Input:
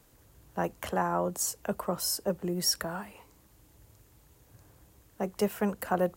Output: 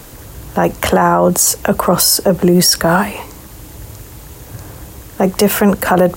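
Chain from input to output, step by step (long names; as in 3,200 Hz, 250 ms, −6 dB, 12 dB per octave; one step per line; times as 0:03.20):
boost into a limiter +27 dB
level −1 dB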